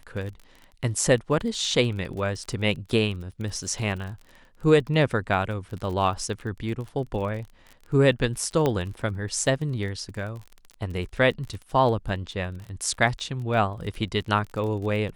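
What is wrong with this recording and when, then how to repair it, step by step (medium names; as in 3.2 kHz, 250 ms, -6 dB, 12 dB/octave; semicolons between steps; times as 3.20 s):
crackle 32 per s -34 dBFS
8.66 s: pop -11 dBFS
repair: de-click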